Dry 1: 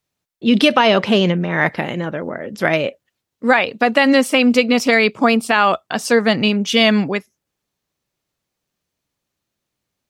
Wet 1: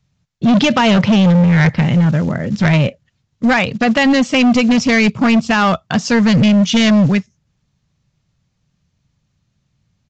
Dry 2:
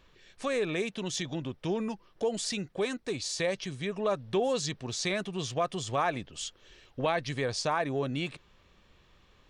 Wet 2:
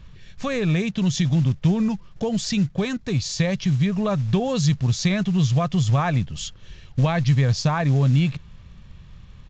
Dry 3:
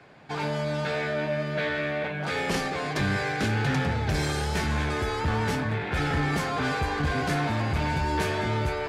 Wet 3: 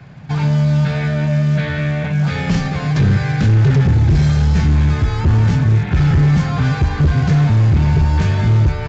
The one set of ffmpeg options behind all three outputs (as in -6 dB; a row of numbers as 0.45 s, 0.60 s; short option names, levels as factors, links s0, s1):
-filter_complex "[0:a]lowshelf=f=230:t=q:w=1.5:g=14,asplit=2[s0][s1];[s1]acompressor=threshold=0.0631:ratio=12,volume=0.75[s2];[s0][s2]amix=inputs=2:normalize=0,acrusher=bits=7:mode=log:mix=0:aa=0.000001,asoftclip=type=hard:threshold=0.335,aresample=16000,aresample=44100,volume=1.12"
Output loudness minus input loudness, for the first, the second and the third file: +2.5 LU, +10.5 LU, +12.5 LU